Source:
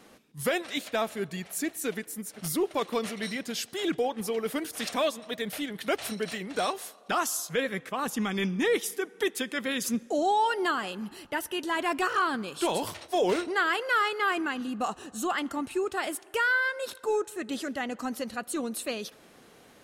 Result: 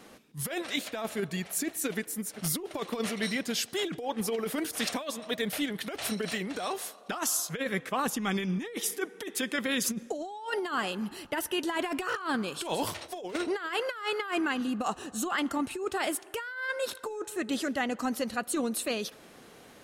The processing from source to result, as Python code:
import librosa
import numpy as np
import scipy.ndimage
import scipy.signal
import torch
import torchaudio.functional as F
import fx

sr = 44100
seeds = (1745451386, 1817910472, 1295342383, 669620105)

y = fx.over_compress(x, sr, threshold_db=-30.0, ratio=-0.5)